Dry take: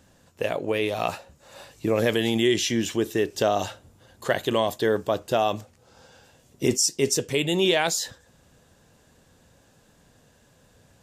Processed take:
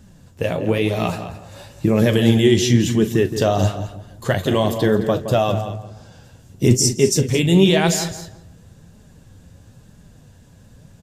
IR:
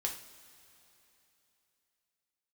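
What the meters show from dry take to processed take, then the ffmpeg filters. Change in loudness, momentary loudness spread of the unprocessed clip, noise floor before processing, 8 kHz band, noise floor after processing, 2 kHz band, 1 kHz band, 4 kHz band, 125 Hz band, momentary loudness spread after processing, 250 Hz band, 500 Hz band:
+6.5 dB, 9 LU, -60 dBFS, +4.0 dB, -48 dBFS, +2.5 dB, +2.5 dB, +3.0 dB, +15.5 dB, 15 LU, +9.5 dB, +5.0 dB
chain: -filter_complex "[0:a]bass=f=250:g=14,treble=f=4k:g=2,asplit=2[a][b];[b]aecho=0:1:41|216:0.211|0.2[c];[a][c]amix=inputs=2:normalize=0,flanger=delay=4.7:depth=6.6:regen=49:speed=1:shape=sinusoidal,asplit=2[d][e];[e]adelay=168,lowpass=f=1.4k:p=1,volume=-9dB,asplit=2[f][g];[g]adelay=168,lowpass=f=1.4k:p=1,volume=0.31,asplit=2[h][i];[i]adelay=168,lowpass=f=1.4k:p=1,volume=0.31,asplit=2[j][k];[k]adelay=168,lowpass=f=1.4k:p=1,volume=0.31[l];[f][h][j][l]amix=inputs=4:normalize=0[m];[d][m]amix=inputs=2:normalize=0,volume=6dB"

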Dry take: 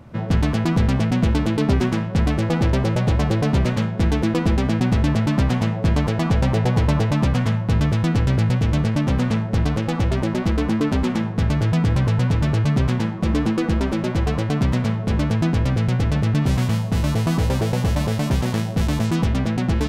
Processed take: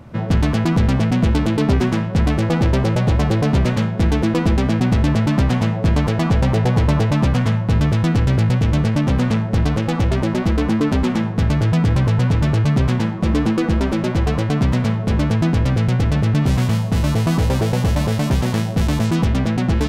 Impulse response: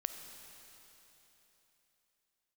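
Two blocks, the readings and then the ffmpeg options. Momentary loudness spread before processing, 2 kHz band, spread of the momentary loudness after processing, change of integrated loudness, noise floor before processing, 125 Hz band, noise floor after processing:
3 LU, +2.5 dB, 2 LU, +2.5 dB, -26 dBFS, +2.5 dB, -23 dBFS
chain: -af "acontrast=89,volume=-4dB"

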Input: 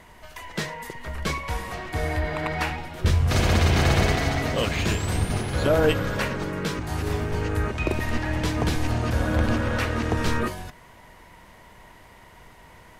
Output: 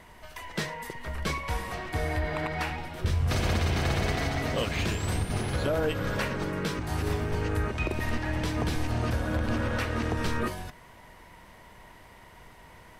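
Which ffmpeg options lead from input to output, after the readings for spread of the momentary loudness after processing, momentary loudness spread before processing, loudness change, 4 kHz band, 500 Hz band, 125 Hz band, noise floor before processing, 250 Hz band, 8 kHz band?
7 LU, 11 LU, -5.0 dB, -5.0 dB, -5.5 dB, -5.0 dB, -50 dBFS, -4.5 dB, -5.5 dB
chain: -af "bandreject=f=6.8k:w=18,alimiter=limit=-16.5dB:level=0:latency=1:release=215,volume=-2dB"

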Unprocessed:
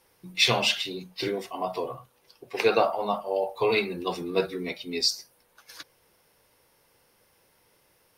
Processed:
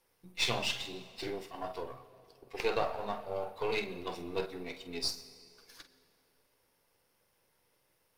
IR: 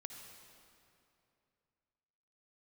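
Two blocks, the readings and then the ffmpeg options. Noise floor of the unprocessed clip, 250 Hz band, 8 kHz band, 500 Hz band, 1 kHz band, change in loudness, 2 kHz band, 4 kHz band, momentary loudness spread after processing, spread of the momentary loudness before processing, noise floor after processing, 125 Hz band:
-65 dBFS, -10.0 dB, -8.5 dB, -10.0 dB, -9.5 dB, -9.5 dB, -9.5 dB, -10.0 dB, 20 LU, 15 LU, -74 dBFS, -8.0 dB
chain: -filter_complex "[0:a]aeval=exprs='if(lt(val(0),0),0.447*val(0),val(0))':c=same,asplit=2[a][b];[1:a]atrim=start_sample=2205,adelay=47[c];[b][c]afir=irnorm=-1:irlink=0,volume=-6dB[d];[a][d]amix=inputs=2:normalize=0,volume=-7.5dB"

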